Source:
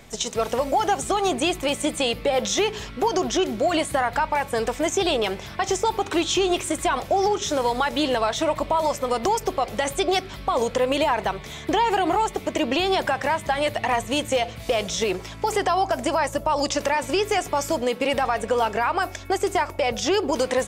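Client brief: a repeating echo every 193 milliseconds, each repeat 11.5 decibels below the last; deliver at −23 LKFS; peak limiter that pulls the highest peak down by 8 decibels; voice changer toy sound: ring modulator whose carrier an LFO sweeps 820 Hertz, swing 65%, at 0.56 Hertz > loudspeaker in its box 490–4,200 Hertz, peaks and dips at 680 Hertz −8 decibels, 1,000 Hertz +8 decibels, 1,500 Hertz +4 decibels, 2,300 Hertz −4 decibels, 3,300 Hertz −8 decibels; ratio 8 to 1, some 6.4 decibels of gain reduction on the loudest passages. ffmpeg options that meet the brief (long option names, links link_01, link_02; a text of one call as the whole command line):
ffmpeg -i in.wav -af "acompressor=threshold=-24dB:ratio=8,alimiter=limit=-22dB:level=0:latency=1,aecho=1:1:193|386|579:0.266|0.0718|0.0194,aeval=exprs='val(0)*sin(2*PI*820*n/s+820*0.65/0.56*sin(2*PI*0.56*n/s))':channel_layout=same,highpass=490,equalizer=frequency=680:width_type=q:width=4:gain=-8,equalizer=frequency=1000:width_type=q:width=4:gain=8,equalizer=frequency=1500:width_type=q:width=4:gain=4,equalizer=frequency=2300:width_type=q:width=4:gain=-4,equalizer=frequency=3300:width_type=q:width=4:gain=-8,lowpass=frequency=4200:width=0.5412,lowpass=frequency=4200:width=1.3066,volume=10dB" out.wav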